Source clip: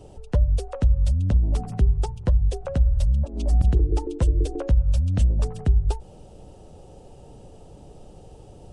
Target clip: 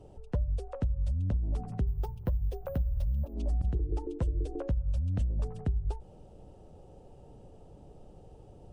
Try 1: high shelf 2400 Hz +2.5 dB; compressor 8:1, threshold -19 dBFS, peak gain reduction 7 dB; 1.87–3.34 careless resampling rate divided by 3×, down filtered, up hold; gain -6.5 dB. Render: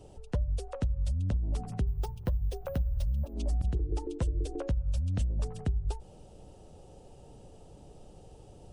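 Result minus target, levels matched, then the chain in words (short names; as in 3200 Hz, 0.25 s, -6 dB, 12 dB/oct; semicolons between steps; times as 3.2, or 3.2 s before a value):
4000 Hz band +8.0 dB
high shelf 2400 Hz -9 dB; compressor 8:1, threshold -19 dBFS, peak gain reduction 7 dB; 1.87–3.34 careless resampling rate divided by 3×, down filtered, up hold; gain -6.5 dB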